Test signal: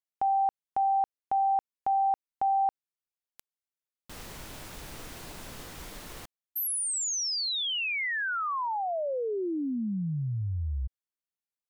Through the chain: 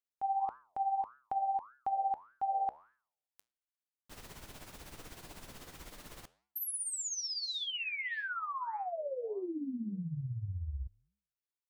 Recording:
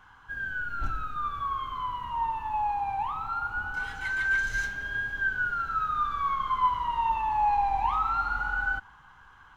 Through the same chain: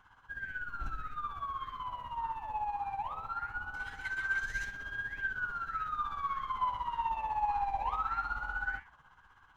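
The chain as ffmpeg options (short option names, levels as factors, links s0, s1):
-af "tremolo=f=16:d=0.61,flanger=delay=7.2:depth=9.1:regen=-89:speed=1.7:shape=sinusoidal"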